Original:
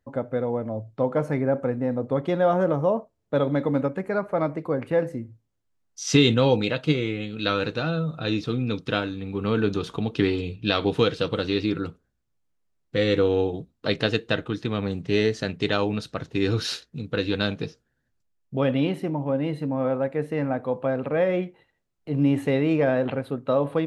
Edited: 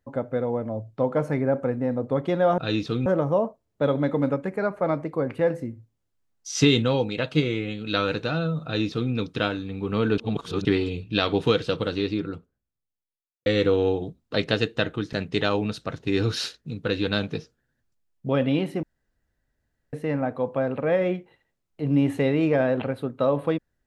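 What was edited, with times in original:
6.08–6.70 s: fade out, to -6.5 dB
8.16–8.64 s: copy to 2.58 s
9.70–10.17 s: reverse
11.11–12.98 s: studio fade out
14.65–15.41 s: delete
19.11–20.21 s: room tone

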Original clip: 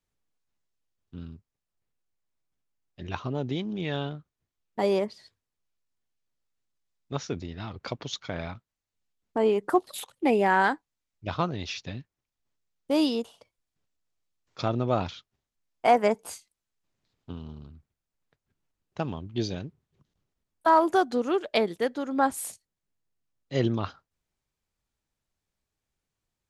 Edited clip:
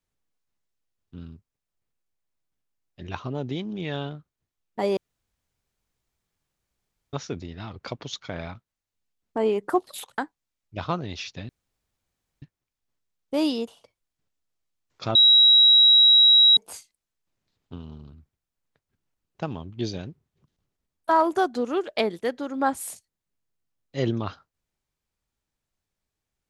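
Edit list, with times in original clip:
4.97–7.13 s: room tone
10.18–10.68 s: delete
11.99 s: insert room tone 0.93 s
14.72–16.14 s: bleep 3.86 kHz -11.5 dBFS

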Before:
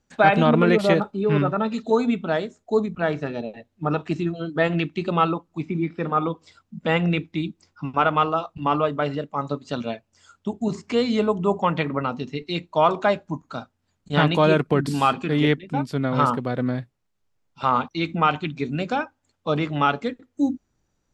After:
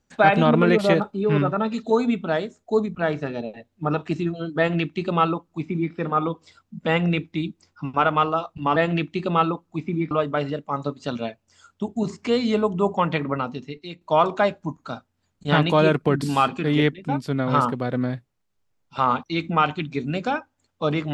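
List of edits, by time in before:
4.58–5.93 s: copy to 8.76 s
12.01–12.66 s: fade out linear, to -14 dB

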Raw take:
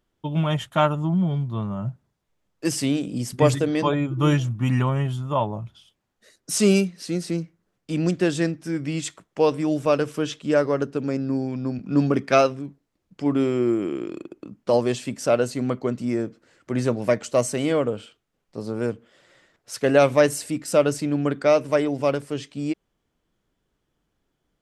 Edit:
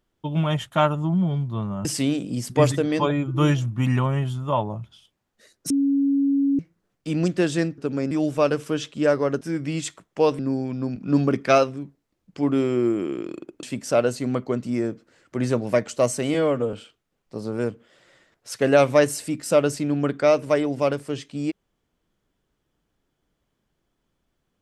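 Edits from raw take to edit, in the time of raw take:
1.85–2.68 s: delete
6.53–7.42 s: bleep 278 Hz -17 dBFS
8.61–9.59 s: swap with 10.89–11.22 s
14.46–14.98 s: delete
17.69–17.95 s: stretch 1.5×

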